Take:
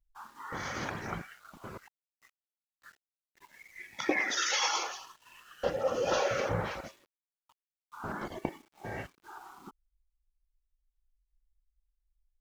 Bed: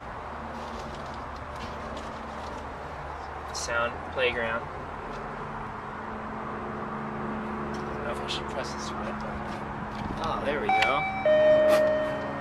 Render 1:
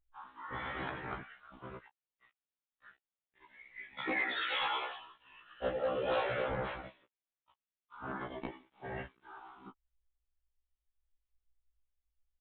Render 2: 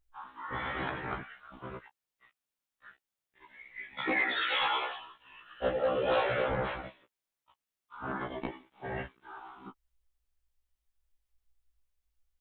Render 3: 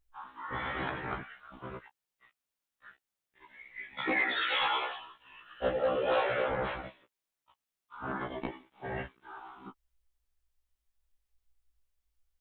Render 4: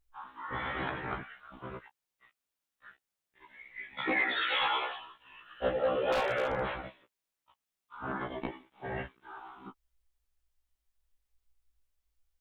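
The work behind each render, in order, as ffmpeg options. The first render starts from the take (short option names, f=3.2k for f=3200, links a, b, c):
-af "aresample=8000,volume=24.5dB,asoftclip=hard,volume=-24.5dB,aresample=44100,afftfilt=real='re*1.73*eq(mod(b,3),0)':imag='im*1.73*eq(mod(b,3),0)':win_size=2048:overlap=0.75"
-af "volume=4.5dB"
-filter_complex "[0:a]asettb=1/sr,asplit=3[a][b][c];[a]atrim=end=5.964[d];[b]atrim=start=5.96:end=6.62,asetpts=PTS-STARTPTS,afade=t=in:d=0.004:c=qsin,afade=t=out:st=0.656:d=0.004:c=qsin,bass=f=250:g=-6,treble=f=4k:g=-5[e];[c]atrim=start=6.616[f];[d][e]acrossfade=d=0.004:c1=hsin:c2=qsin[g];[g][f]acrossfade=d=0.004:c1=qsin:c2=hsin"
-filter_complex "[0:a]asettb=1/sr,asplit=3[a][b][c];[a]atrim=end=6.124[d];[b]atrim=start=6.12:end=6.61,asetpts=PTS-STARTPTS,afade=t=in:d=0.004:c=qsin,afade=t=out:st=0.486:d=0.004:c=qsin,aeval=exprs='0.0668*(abs(mod(val(0)/0.0668+3,4)-2)-1)':c=same[e];[c]atrim=start=6.606[f];[d][e]acrossfade=d=0.004:c1=hsin:c2=qsin[g];[g][f]acrossfade=d=0.004:c1=qsin:c2=hsin"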